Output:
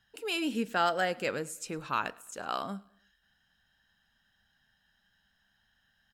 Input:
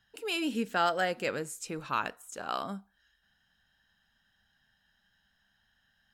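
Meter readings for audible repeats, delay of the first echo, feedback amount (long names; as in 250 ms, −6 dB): 2, 105 ms, 45%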